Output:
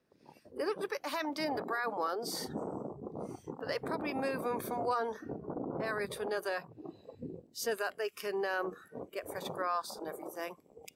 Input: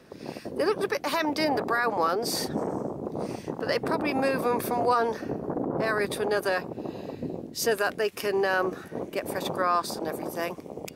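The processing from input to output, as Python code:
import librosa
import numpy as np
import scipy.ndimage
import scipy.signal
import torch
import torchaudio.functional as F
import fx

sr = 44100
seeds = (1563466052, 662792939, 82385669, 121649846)

y = fx.noise_reduce_blind(x, sr, reduce_db=14)
y = F.gain(torch.from_numpy(y), -9.0).numpy()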